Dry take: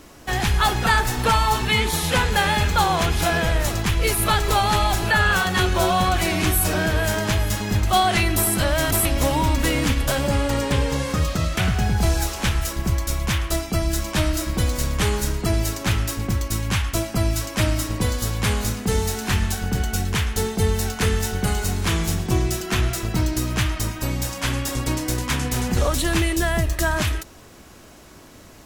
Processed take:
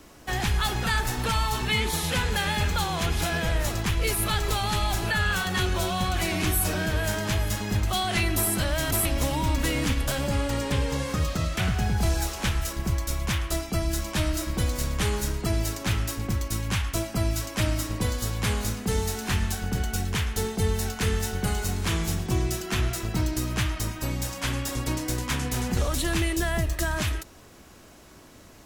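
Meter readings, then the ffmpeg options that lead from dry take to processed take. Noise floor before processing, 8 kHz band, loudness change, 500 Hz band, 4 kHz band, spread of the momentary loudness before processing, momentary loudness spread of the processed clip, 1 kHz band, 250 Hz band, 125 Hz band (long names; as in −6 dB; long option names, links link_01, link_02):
−45 dBFS, −4.5 dB, −5.0 dB, −6.0 dB, −4.5 dB, 5 LU, 4 LU, −8.0 dB, −5.0 dB, −4.5 dB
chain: -filter_complex "[0:a]acrossover=split=290|1800|3100[link_01][link_02][link_03][link_04];[link_02]alimiter=limit=-20.5dB:level=0:latency=1[link_05];[link_01][link_05][link_03][link_04]amix=inputs=4:normalize=0,volume=-4.5dB"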